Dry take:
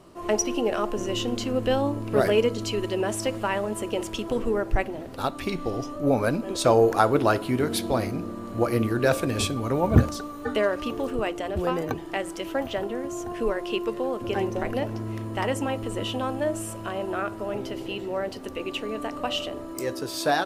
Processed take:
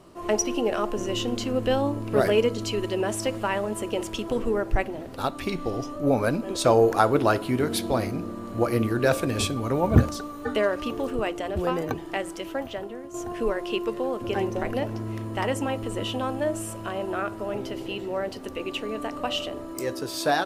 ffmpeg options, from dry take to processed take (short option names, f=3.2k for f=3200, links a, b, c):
-filter_complex "[0:a]asplit=2[a][b];[a]atrim=end=13.14,asetpts=PTS-STARTPTS,afade=t=out:st=12.15:d=0.99:silence=0.334965[c];[b]atrim=start=13.14,asetpts=PTS-STARTPTS,afade=t=in:d=0.004:c=hsin:silence=0.334965[d];[c][d]concat=n=2:v=0:a=1"